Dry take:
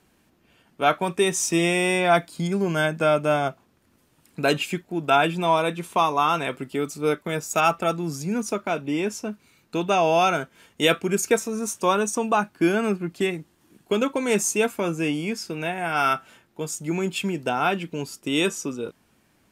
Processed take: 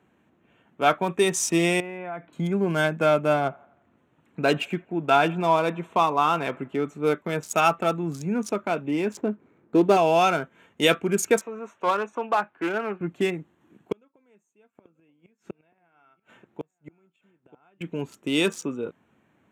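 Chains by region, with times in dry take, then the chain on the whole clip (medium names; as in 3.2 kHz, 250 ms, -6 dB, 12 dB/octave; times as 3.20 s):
1.80–2.33 s: low-pass 2.7 kHz 24 dB/octave + compression 4:1, threshold -33 dBFS
3.33–7.02 s: treble shelf 6.5 kHz -8.5 dB + feedback echo behind a band-pass 86 ms, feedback 50%, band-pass 1.2 kHz, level -23 dB
9.17–9.97 s: median filter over 15 samples + peaking EQ 350 Hz +9 dB 1.2 oct
11.41–13.01 s: three-band isolator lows -14 dB, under 440 Hz, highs -20 dB, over 3.5 kHz + overload inside the chain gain 14.5 dB + loudspeaker Doppler distortion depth 0.16 ms
13.92–17.81 s: inverted gate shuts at -21 dBFS, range -38 dB + delay 935 ms -18 dB
whole clip: local Wiener filter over 9 samples; high-pass 100 Hz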